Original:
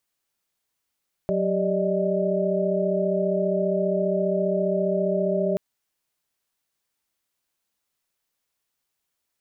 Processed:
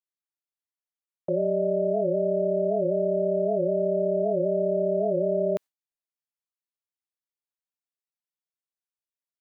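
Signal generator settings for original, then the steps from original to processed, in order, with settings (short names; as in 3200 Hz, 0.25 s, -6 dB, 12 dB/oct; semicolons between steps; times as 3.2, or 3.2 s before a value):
chord F#3/G4/D5/D#5 sine, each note -26 dBFS 4.28 s
gate with hold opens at -18 dBFS; tone controls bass -7 dB, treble -1 dB; record warp 78 rpm, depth 160 cents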